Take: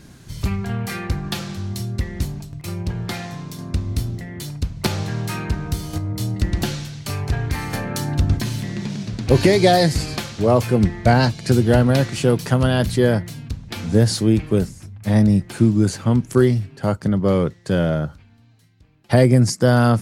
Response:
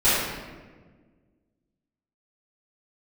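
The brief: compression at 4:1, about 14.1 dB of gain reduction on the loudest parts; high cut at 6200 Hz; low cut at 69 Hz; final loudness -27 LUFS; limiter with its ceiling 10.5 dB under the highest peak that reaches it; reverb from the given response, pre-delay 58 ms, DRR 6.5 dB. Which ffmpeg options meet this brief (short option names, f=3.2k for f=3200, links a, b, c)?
-filter_complex "[0:a]highpass=69,lowpass=6.2k,acompressor=threshold=-27dB:ratio=4,alimiter=level_in=0.5dB:limit=-24dB:level=0:latency=1,volume=-0.5dB,asplit=2[a][b];[1:a]atrim=start_sample=2205,adelay=58[c];[b][c]afir=irnorm=-1:irlink=0,volume=-25.5dB[d];[a][d]amix=inputs=2:normalize=0,volume=6dB"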